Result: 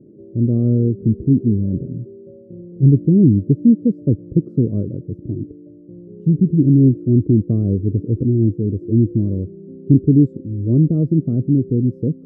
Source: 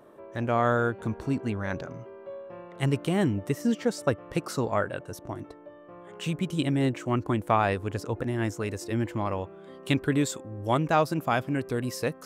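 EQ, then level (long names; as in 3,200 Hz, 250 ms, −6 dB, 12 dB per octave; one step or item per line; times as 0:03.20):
high-pass filter 130 Hz 12 dB per octave
inverse Chebyshev low-pass filter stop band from 770 Hz, stop band 40 dB
spectral tilt −4.5 dB per octave
+5.5 dB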